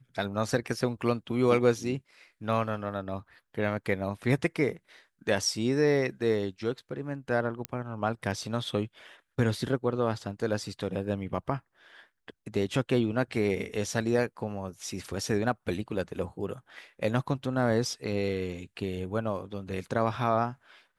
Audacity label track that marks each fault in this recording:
7.650000	7.650000	click −15 dBFS

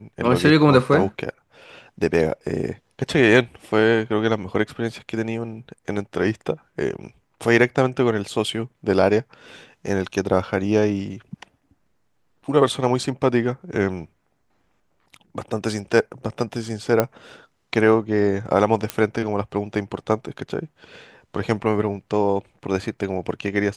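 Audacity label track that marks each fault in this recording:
17.000000	17.000000	click −5 dBFS
18.900000	18.900000	click −7 dBFS

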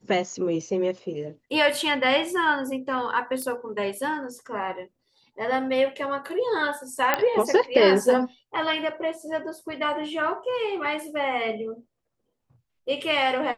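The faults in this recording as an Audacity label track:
3.420000	3.420000	click −19 dBFS
7.140000	7.140000	click −6 dBFS

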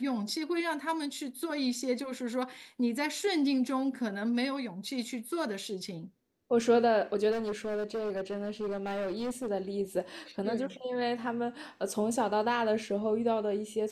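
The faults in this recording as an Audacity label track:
7.310000	9.480000	clipping −30 dBFS

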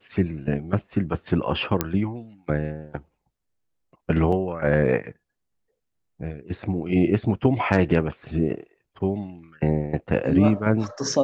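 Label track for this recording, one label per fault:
1.810000	1.810000	click −6 dBFS
4.320000	4.320000	drop-out 4.8 ms

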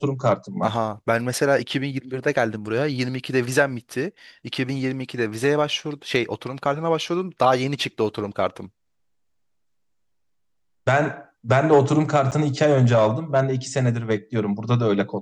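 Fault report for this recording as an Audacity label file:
12.310000	12.320000	drop-out 8.4 ms

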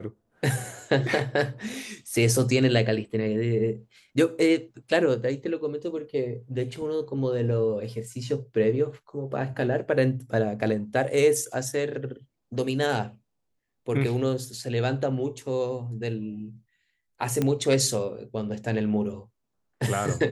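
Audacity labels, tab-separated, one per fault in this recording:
17.420000	17.420000	click −12 dBFS

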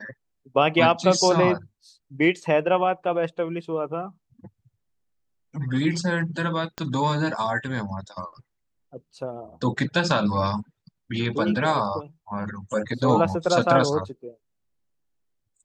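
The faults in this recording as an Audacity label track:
6.780000	6.780000	click −15 dBFS

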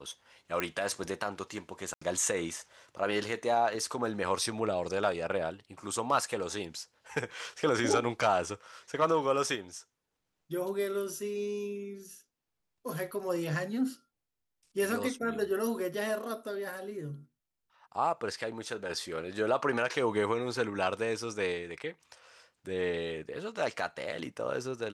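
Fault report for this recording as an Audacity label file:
0.600000	0.600000	click −16 dBFS
1.940000	2.020000	drop-out 75 ms

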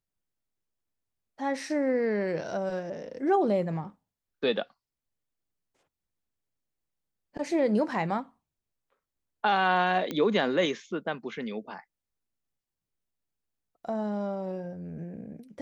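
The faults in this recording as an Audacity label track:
10.110000	10.110000	click −18 dBFS

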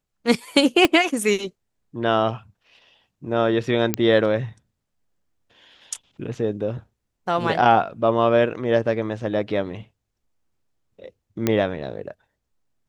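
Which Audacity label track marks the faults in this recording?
0.850000	0.850000	click −3 dBFS
3.940000	3.940000	click −4 dBFS
11.470000	11.470000	click −6 dBFS

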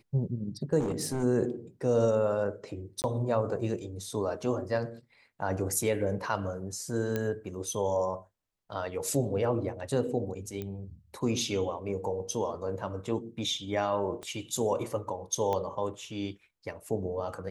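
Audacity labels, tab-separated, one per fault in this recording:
0.790000	1.240000	clipping −27 dBFS
3.020000	3.040000	drop-out 19 ms
7.160000	7.160000	click −17 dBFS
10.620000	10.620000	click −23 dBFS
14.230000	14.230000	click −26 dBFS
15.530000	15.530000	click −19 dBFS

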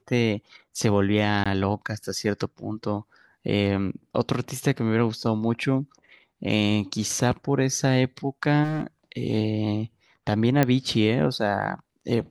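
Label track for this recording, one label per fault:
1.440000	1.460000	drop-out 16 ms
8.630000	8.830000	clipping −24 dBFS
10.630000	10.630000	click −7 dBFS

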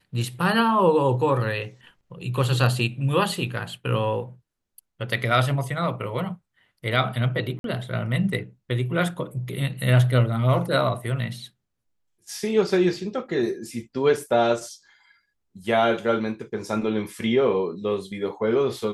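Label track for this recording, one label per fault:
7.590000	7.640000	drop-out 52 ms

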